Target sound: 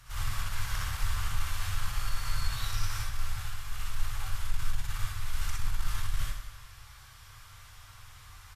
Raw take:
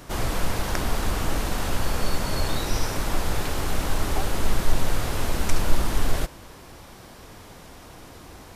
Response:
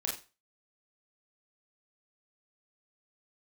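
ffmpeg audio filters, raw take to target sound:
-filter_complex "[0:a]asettb=1/sr,asplit=3[link_01][link_02][link_03];[link_01]atrim=end=3.024[link_04];[link_02]atrim=start=3.02:end=5.34,asetpts=PTS-STARTPTS,afade=type=in:duration=0.004:curve=qsin,afade=type=out:start_time=2.316:duration=0.004:curve=qsin,agate=range=-33dB:threshold=-17dB:ratio=3:detection=peak[link_05];[link_03]atrim=start=5.336[link_06];[link_04][link_05]acrossfade=duration=0.004:curve1=hsin:curve2=qsin[link_07];[link_07][link_06]acrossfade=duration=0.004:curve1=qsin:curve2=hsin,firequalizer=gain_entry='entry(120,0);entry(180,-25);entry(330,-27);entry(1200,-3)':delay=0.05:min_phase=1,aecho=1:1:84|168|252|336|420|504|588:0.251|0.151|0.0904|0.0543|0.0326|0.0195|0.0117,asoftclip=type=tanh:threshold=-18dB[link_08];[1:a]atrim=start_sample=2205,asetrate=29547,aresample=44100[link_09];[link_08][link_09]afir=irnorm=-1:irlink=0,volume=-8dB"

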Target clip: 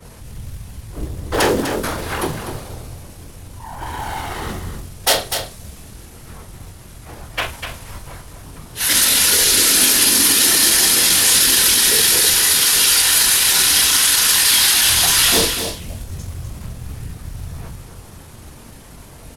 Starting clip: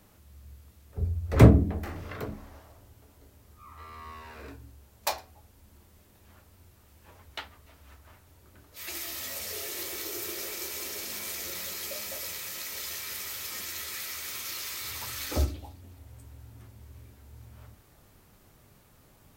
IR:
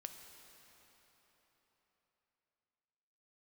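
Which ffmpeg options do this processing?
-filter_complex "[0:a]lowshelf=frequency=140:gain=3.5,bandreject=frequency=60:width_type=h:width=6,bandreject=frequency=120:width_type=h:width=6,bandreject=frequency=180:width_type=h:width=6,bandreject=frequency=240:width_type=h:width=6,bandreject=frequency=300:width_type=h:width=6,bandreject=frequency=360:width_type=h:width=6,bandreject=frequency=420:width_type=h:width=6,afftfilt=real='hypot(re,im)*cos(2*PI*random(0))':imag='hypot(re,im)*sin(2*PI*random(1))':win_size=512:overlap=0.75,acrossover=split=450|4900[link_01][link_02][link_03];[link_01]acompressor=threshold=-48dB:ratio=20[link_04];[link_04][link_02][link_03]amix=inputs=3:normalize=0,acrusher=bits=5:mode=log:mix=0:aa=0.000001,apsyclip=34dB,flanger=delay=17.5:depth=2.9:speed=0.62,asoftclip=type=tanh:threshold=-1dB,asetrate=34006,aresample=44100,atempo=1.29684,asplit=2[link_05][link_06];[link_06]adelay=44,volume=-11.5dB[link_07];[link_05][link_07]amix=inputs=2:normalize=0,asplit=2[link_08][link_09];[link_09]aecho=0:1:249:0.376[link_10];[link_08][link_10]amix=inputs=2:normalize=0,adynamicequalizer=threshold=0.0355:dfrequency=2300:dqfactor=0.7:tfrequency=2300:tqfactor=0.7:attack=5:release=100:ratio=0.375:range=3.5:mode=boostabove:tftype=highshelf,volume=-7dB"

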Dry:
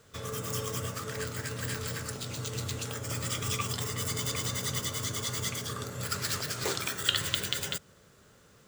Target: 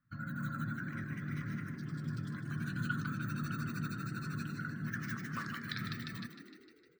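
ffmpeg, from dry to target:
ffmpeg -i in.wav -filter_complex "[0:a]afftdn=noise_reduction=17:noise_floor=-42,firequalizer=gain_entry='entry(120,0);entry(200,5);entry(350,-26);entry(640,-20);entry(940,6);entry(1900,-12);entry(8300,-28);entry(16000,5)':delay=0.05:min_phase=1,asetrate=54684,aresample=44100,asplit=2[link_01][link_02];[link_02]asplit=7[link_03][link_04][link_05][link_06][link_07][link_08][link_09];[link_03]adelay=153,afreqshift=40,volume=-10dB[link_10];[link_04]adelay=306,afreqshift=80,volume=-14.4dB[link_11];[link_05]adelay=459,afreqshift=120,volume=-18.9dB[link_12];[link_06]adelay=612,afreqshift=160,volume=-23.3dB[link_13];[link_07]adelay=765,afreqshift=200,volume=-27.7dB[link_14];[link_08]adelay=918,afreqshift=240,volume=-32.2dB[link_15];[link_09]adelay=1071,afreqshift=280,volume=-36.6dB[link_16];[link_10][link_11][link_12][link_13][link_14][link_15][link_16]amix=inputs=7:normalize=0[link_17];[link_01][link_17]amix=inputs=2:normalize=0,volume=-2dB" out.wav

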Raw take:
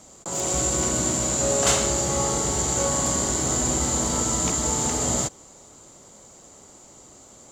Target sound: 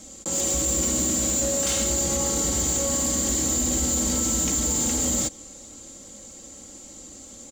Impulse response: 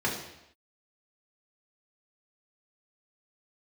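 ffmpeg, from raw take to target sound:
-filter_complex "[0:a]aecho=1:1:3.7:0.63,alimiter=limit=-13.5dB:level=0:latency=1:release=25,equalizer=frequency=960:width=0.93:gain=-11,asplit=2[link_01][link_02];[link_02]acompressor=threshold=-27dB:ratio=6,volume=-2dB[link_03];[link_01][link_03]amix=inputs=2:normalize=0,asoftclip=type=tanh:threshold=-18dB"

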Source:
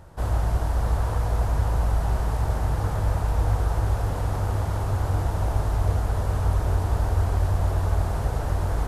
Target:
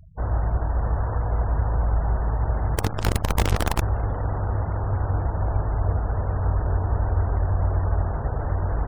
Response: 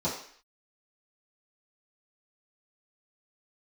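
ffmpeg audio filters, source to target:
-filter_complex "[0:a]asettb=1/sr,asplit=3[link_01][link_02][link_03];[link_01]atrim=end=2.754[link_04];[link_02]atrim=start=2.75:end=3.82,asetpts=PTS-STARTPTS,afade=type=in:duration=0.004:curve=qsin,afade=type=out:start_time=1.066:duration=0.004:curve=qsin,acrusher=bits=4:dc=4:mix=0:aa=0.000001[link_05];[link_03]atrim=start=3.816[link_06];[link_04][link_05]acrossfade=duration=0.004:curve1=hsin:curve2=qsin[link_07];[link_07][link_06]acrossfade=duration=0.004:curve1=qsin:curve2=hsin,asplit=2[link_08][link_09];[link_09]adelay=581,lowpass=frequency=2100:poles=1,volume=-17dB,asplit=2[link_10][link_11];[link_11]adelay=581,lowpass=frequency=2100:poles=1,volume=0.46,asplit=2[link_12][link_13];[link_13]adelay=581,lowpass=frequency=2100:poles=1,volume=0.46,asplit=2[link_14][link_15];[link_15]adelay=581,lowpass=frequency=2100:poles=1,volume=0.46[link_16];[link_08][link_10][link_12][link_14][link_16]amix=inputs=5:normalize=0,afftfilt=real='re*gte(hypot(re,im),0.0141)':imag='im*gte(hypot(re,im),0.0141)':win_size=1024:overlap=0.75"

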